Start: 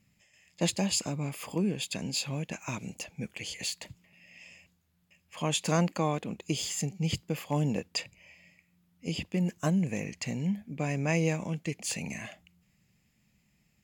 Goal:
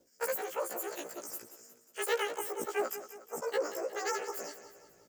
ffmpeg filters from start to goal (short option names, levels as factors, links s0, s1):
-af "afftfilt=real='re':imag='-im':win_size=4096:overlap=0.75,lowpass=8800,areverse,acompressor=mode=upward:threshold=0.00178:ratio=2.5,areverse,aecho=1:1:490|980|1470|1960|2450:0.224|0.114|0.0582|0.0297|0.0151,asetrate=119952,aresample=44100"